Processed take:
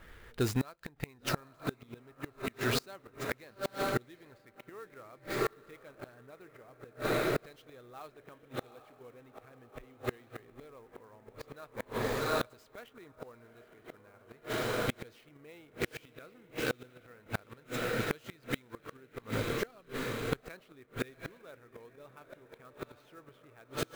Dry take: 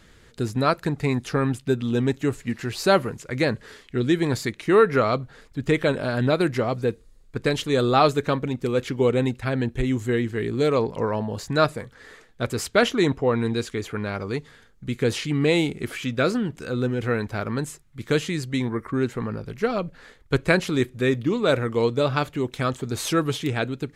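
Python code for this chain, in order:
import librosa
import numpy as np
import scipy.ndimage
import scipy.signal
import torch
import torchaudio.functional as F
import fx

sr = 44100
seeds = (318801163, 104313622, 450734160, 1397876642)

y = fx.peak_eq(x, sr, hz=180.0, db=-9.5, octaves=2.3)
y = fx.echo_diffused(y, sr, ms=814, feedback_pct=67, wet_db=-9.0)
y = fx.gate_flip(y, sr, shuts_db=-21.0, range_db=-31)
y = fx.env_lowpass(y, sr, base_hz=1800.0, full_db=-35.0)
y = fx.clock_jitter(y, sr, seeds[0], jitter_ms=0.02)
y = F.gain(torch.from_numpy(y), 2.5).numpy()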